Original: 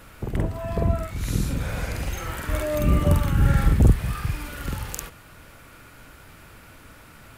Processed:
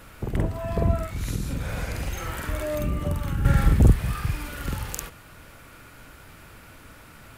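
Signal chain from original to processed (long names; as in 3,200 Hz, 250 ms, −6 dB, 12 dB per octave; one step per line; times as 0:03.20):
0:01.07–0:03.45: downward compressor 3 to 1, threshold −25 dBFS, peak gain reduction 9 dB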